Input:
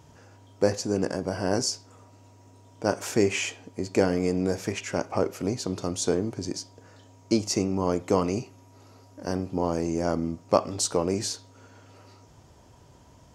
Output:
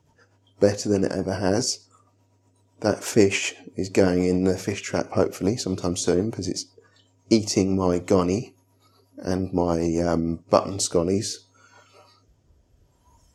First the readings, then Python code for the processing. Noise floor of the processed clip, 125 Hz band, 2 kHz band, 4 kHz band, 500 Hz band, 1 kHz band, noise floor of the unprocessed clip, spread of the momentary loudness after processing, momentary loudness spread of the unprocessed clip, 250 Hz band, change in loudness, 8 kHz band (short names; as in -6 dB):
-64 dBFS, +4.5 dB, +3.0 dB, +3.0 dB, +4.0 dB, +2.0 dB, -54 dBFS, 9 LU, 8 LU, +4.5 dB, +4.0 dB, +2.5 dB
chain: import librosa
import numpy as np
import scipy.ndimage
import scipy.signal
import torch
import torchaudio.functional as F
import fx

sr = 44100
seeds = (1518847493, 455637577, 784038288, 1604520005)

y = fx.rotary_switch(x, sr, hz=8.0, then_hz=0.7, switch_at_s=9.84)
y = fx.noise_reduce_blind(y, sr, reduce_db=14)
y = y * librosa.db_to_amplitude(6.0)